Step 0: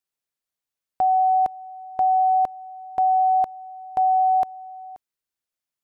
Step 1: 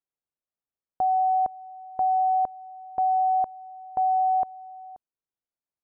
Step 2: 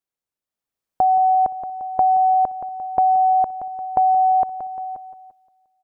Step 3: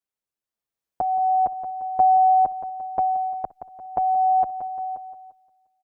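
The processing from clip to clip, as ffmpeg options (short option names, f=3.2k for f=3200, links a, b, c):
-af "lowpass=1.1k,volume=-3dB"
-af "dynaudnorm=f=240:g=7:m=8.5dB,aecho=1:1:174|348|522|696|870:0.251|0.126|0.0628|0.0314|0.0157,acompressor=threshold=-17dB:ratio=6,volume=3dB"
-filter_complex "[0:a]asplit=2[a][b];[b]adelay=7.2,afreqshift=0.35[c];[a][c]amix=inputs=2:normalize=1"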